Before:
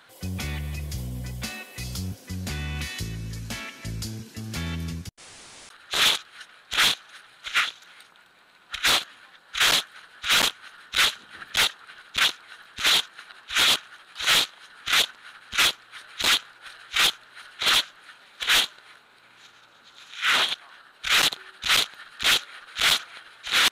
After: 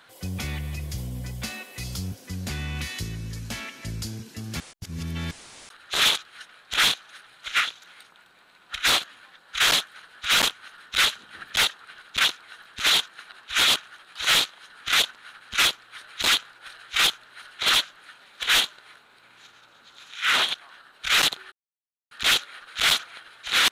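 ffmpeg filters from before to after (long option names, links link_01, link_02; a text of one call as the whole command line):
ffmpeg -i in.wav -filter_complex "[0:a]asplit=5[link_01][link_02][link_03][link_04][link_05];[link_01]atrim=end=4.602[link_06];[link_02]atrim=start=4.598:end=5.312,asetpts=PTS-STARTPTS,areverse[link_07];[link_03]atrim=start=5.308:end=21.52,asetpts=PTS-STARTPTS,afade=type=out:start_time=16.208:duration=0.004:curve=hsin[link_08];[link_04]atrim=start=21.52:end=22.11,asetpts=PTS-STARTPTS,volume=0[link_09];[link_05]atrim=start=22.11,asetpts=PTS-STARTPTS,afade=type=in:duration=0.004:curve=hsin[link_10];[link_06][link_07]acrossfade=duration=0.004:curve1=hsin:curve2=hsin[link_11];[link_08][link_09][link_10]concat=n=3:v=0:a=1[link_12];[link_11][link_12]acrossfade=duration=0.004:curve1=hsin:curve2=hsin" out.wav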